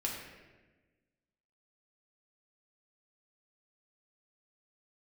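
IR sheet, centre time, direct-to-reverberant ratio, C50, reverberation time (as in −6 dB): 59 ms, −2.5 dB, 2.5 dB, 1.2 s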